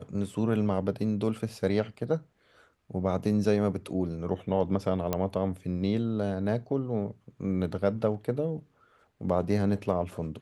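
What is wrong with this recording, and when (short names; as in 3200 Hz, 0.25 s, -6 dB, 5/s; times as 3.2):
5.13 pop -13 dBFS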